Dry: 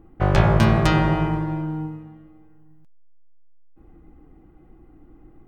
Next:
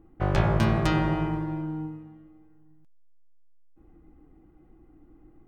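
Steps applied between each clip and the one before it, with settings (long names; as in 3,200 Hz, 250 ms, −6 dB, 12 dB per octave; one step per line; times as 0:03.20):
parametric band 310 Hz +3.5 dB 0.29 octaves
level −6.5 dB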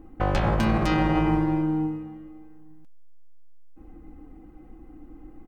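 brickwall limiter −21 dBFS, peak gain reduction 11 dB
comb filter 3.9 ms, depth 46%
level +7.5 dB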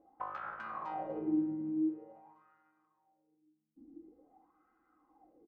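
in parallel at +2 dB: downward compressor, threshold −31 dBFS, peak gain reduction 12.5 dB
on the sum: repeating echo 500 ms, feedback 30%, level −10.5 dB
LFO wah 0.47 Hz 250–1,400 Hz, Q 7
level −6.5 dB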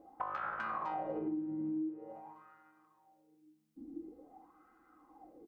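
downward compressor 12 to 1, threshold −42 dBFS, peak gain reduction 15 dB
level +7.5 dB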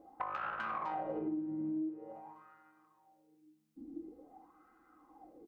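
phase distortion by the signal itself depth 0.063 ms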